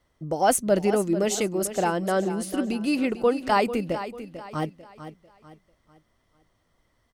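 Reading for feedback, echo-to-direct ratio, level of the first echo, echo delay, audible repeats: 37%, −11.5 dB, −12.0 dB, 445 ms, 3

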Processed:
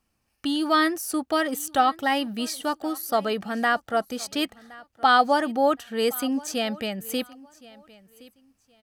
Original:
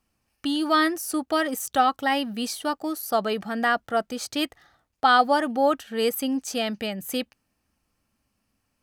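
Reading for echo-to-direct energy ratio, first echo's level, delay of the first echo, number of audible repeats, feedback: −22.0 dB, −22.0 dB, 1,068 ms, 2, 23%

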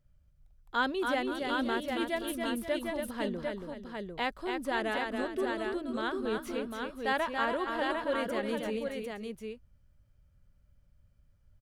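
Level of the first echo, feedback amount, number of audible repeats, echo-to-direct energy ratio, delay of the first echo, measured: −5.0 dB, repeats not evenly spaced, 3, −1.5 dB, 281 ms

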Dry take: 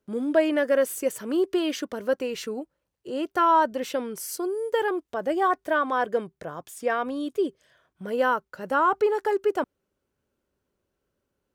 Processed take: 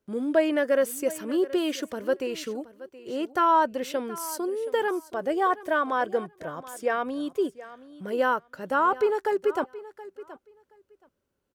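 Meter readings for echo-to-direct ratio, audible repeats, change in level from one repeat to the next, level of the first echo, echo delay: −17.0 dB, 2, −16.0 dB, −17.0 dB, 724 ms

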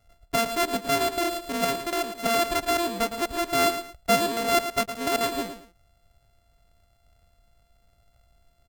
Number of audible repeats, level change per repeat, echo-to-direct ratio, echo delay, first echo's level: 2, −11.5 dB, −9.5 dB, 112 ms, −10.0 dB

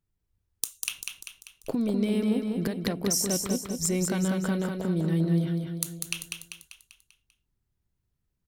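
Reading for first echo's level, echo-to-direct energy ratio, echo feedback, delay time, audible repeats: −4.5 dB, −3.0 dB, 50%, 196 ms, 6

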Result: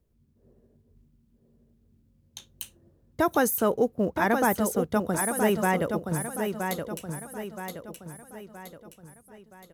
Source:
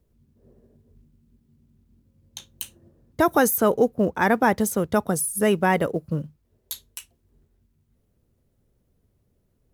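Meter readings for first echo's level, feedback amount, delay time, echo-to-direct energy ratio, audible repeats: −6.0 dB, 45%, 972 ms, −5.0 dB, 5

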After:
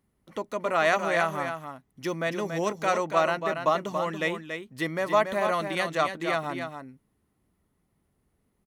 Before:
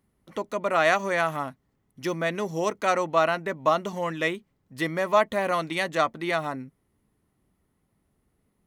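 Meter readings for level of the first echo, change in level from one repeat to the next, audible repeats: −7.0 dB, repeats not evenly spaced, 1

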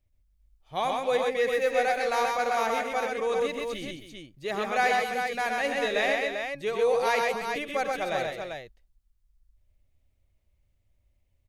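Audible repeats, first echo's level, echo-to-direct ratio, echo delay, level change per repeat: 4, −13.0 dB, 0.0 dB, 84 ms, repeats not evenly spaced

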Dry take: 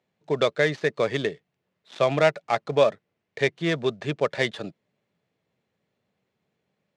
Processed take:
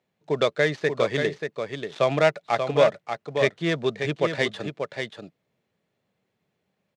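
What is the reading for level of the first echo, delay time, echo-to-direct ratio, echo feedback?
−6.5 dB, 585 ms, −6.5 dB, repeats not evenly spaced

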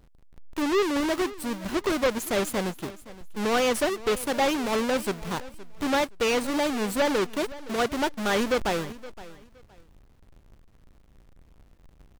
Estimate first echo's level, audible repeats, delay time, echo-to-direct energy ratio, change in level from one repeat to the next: −18.0 dB, 2, 518 ms, −18.0 dB, −13.0 dB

